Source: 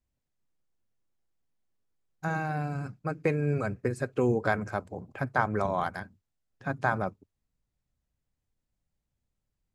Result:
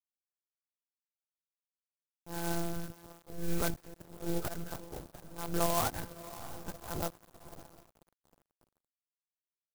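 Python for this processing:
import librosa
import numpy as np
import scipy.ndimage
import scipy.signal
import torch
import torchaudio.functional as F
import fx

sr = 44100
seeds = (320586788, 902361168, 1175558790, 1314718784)

y = fx.octave_divider(x, sr, octaves=1, level_db=3.0, at=(5.8, 7.0))
y = fx.auto_swell(y, sr, attack_ms=273.0)
y = fx.lpc_monotone(y, sr, seeds[0], pitch_hz=170.0, order=10)
y = fx.peak_eq(y, sr, hz=310.0, db=13.0, octaves=0.32, at=(2.29, 2.73))
y = fx.echo_diffused(y, sr, ms=595, feedback_pct=61, wet_db=-11)
y = fx.env_lowpass(y, sr, base_hz=450.0, full_db=-26.5)
y = np.sign(y) * np.maximum(np.abs(y) - 10.0 ** (-45.0 / 20.0), 0.0)
y = fx.peak_eq(y, sr, hz=2600.0, db=11.0, octaves=0.68, at=(3.43, 3.88))
y = fx.clock_jitter(y, sr, seeds[1], jitter_ms=0.11)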